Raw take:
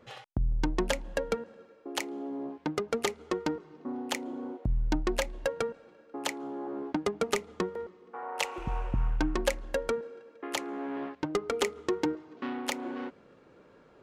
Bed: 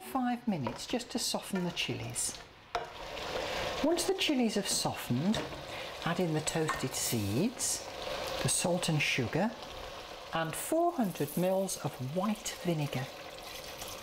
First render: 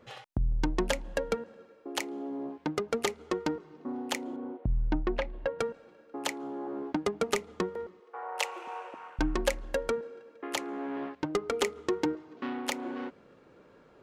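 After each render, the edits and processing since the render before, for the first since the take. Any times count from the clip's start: 4.36–5.59 s: distance through air 310 m; 8.00–9.19 s: high-pass 410 Hz 24 dB/octave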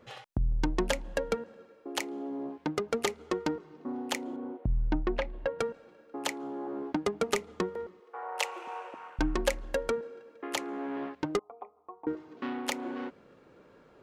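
11.39–12.07 s: cascade formant filter a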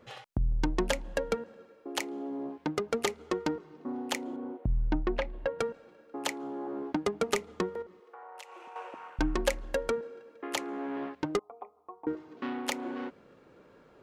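7.82–8.76 s: compression 5:1, threshold -45 dBFS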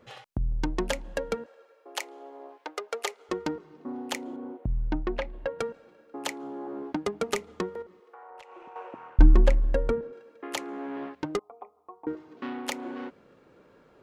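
1.46–3.29 s: high-pass 470 Hz 24 dB/octave; 8.30–10.13 s: RIAA curve playback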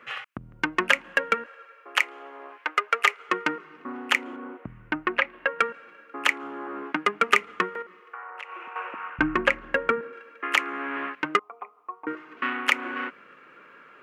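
high-pass 190 Hz 12 dB/octave; high-order bell 1.8 kHz +16 dB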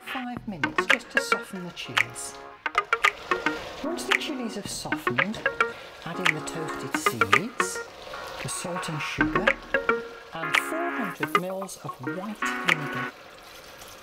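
add bed -2.5 dB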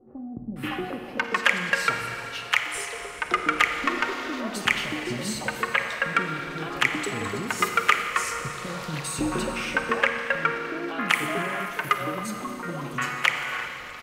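bands offset in time lows, highs 560 ms, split 490 Hz; Schroeder reverb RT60 2.9 s, DRR 5 dB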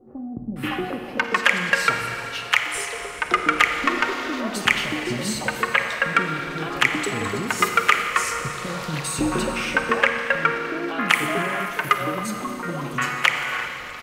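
trim +4 dB; peak limiter -1 dBFS, peak gain reduction 2 dB

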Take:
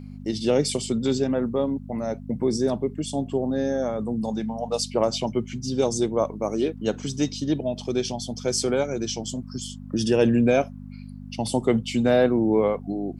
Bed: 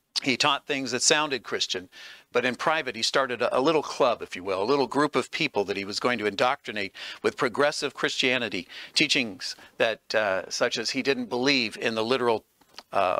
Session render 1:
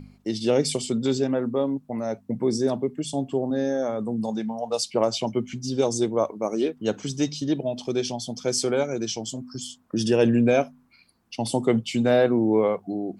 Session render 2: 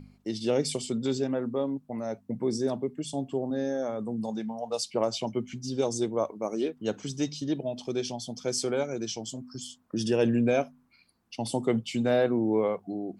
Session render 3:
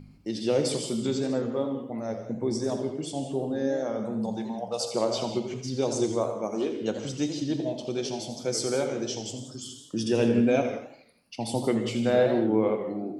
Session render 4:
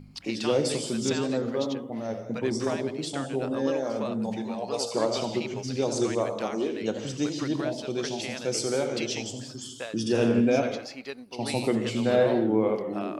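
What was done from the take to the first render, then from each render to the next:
de-hum 50 Hz, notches 5
trim -5 dB
gated-style reverb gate 220 ms flat, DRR 6.5 dB; modulated delay 82 ms, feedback 45%, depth 197 cents, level -10.5 dB
add bed -13.5 dB

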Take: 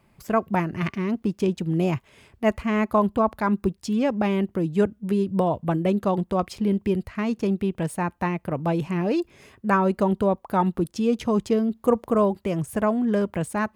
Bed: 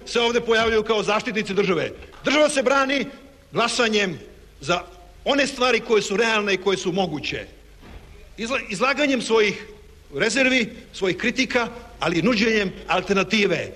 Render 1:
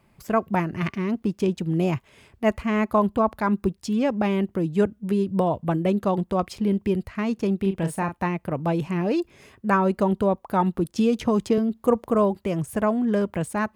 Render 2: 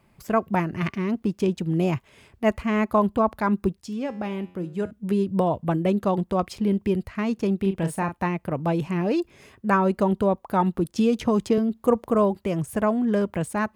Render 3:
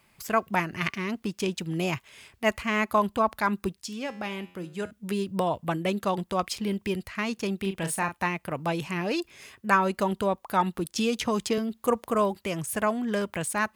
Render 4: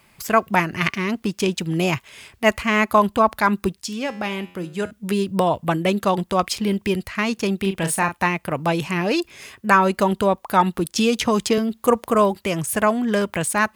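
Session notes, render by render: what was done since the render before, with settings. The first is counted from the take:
7.59–8.17 s: doubling 36 ms -8 dB; 10.98–11.58 s: three bands compressed up and down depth 100%
3.81–4.91 s: feedback comb 90 Hz, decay 0.69 s
tilt shelf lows -7.5 dB, about 1.1 kHz
trim +7.5 dB; peak limiter -2 dBFS, peak gain reduction 2 dB

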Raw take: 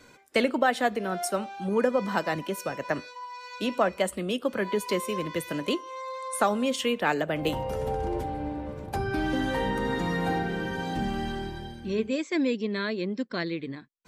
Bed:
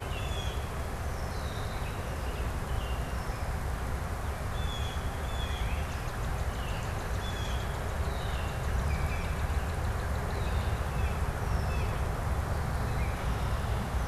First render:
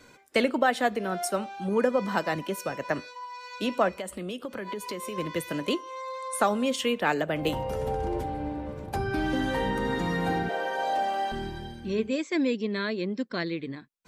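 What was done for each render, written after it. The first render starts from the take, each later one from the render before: 3.93–5.18 s: compression, threshold -31 dBFS; 10.49–11.32 s: resonant high-pass 630 Hz, resonance Q 6.6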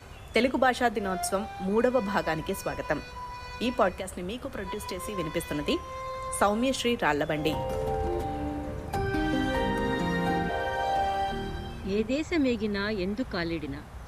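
add bed -11.5 dB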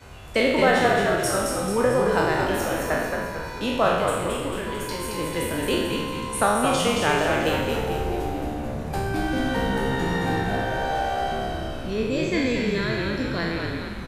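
spectral sustain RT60 1.08 s; frequency-shifting echo 221 ms, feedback 52%, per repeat -66 Hz, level -4 dB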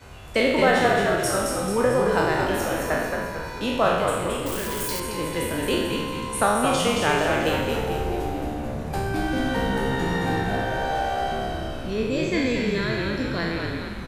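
4.46–5.00 s: zero-crossing glitches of -22.5 dBFS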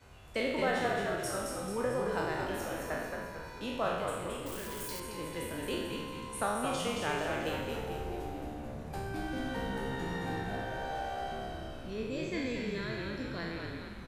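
trim -12 dB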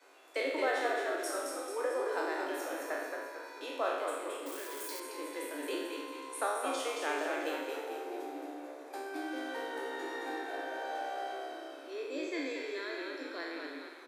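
Chebyshev high-pass 270 Hz, order 10; band-stop 2.9 kHz, Q 11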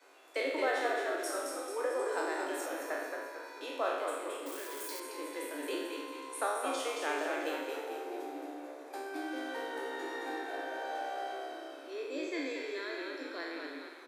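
1.99–2.66 s: peaking EQ 8 kHz +10.5 dB 0.3 oct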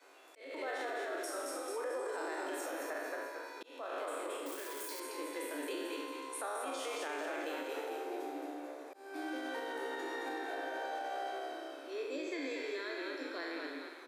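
peak limiter -31 dBFS, peak gain reduction 10.5 dB; slow attack 319 ms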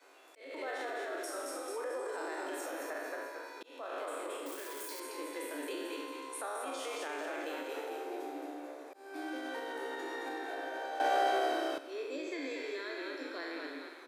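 11.00–11.78 s: gain +10.5 dB

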